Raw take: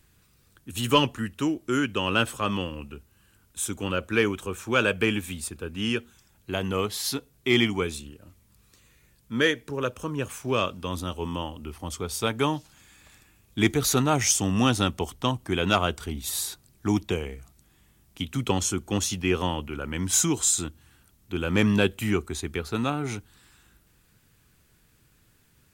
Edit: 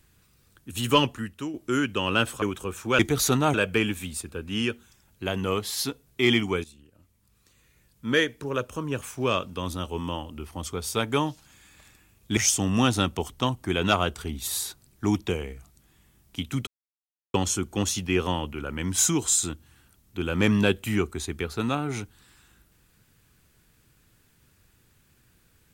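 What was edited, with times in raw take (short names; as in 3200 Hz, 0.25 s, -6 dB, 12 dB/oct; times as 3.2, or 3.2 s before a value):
1.04–1.54 fade out, to -9.5 dB
2.42–4.24 cut
7.91–9.4 fade in, from -15.5 dB
13.64–14.19 move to 4.81
18.49 insert silence 0.67 s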